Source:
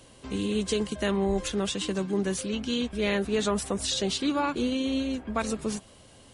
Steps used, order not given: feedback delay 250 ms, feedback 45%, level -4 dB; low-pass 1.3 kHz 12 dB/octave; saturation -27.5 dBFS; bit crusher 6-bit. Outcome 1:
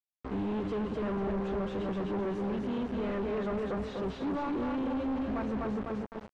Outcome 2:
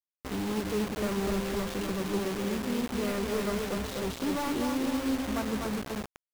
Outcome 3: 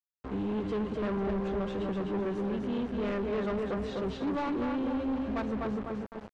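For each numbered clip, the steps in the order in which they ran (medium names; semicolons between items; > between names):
feedback delay > saturation > bit crusher > low-pass; low-pass > saturation > feedback delay > bit crusher; feedback delay > bit crusher > low-pass > saturation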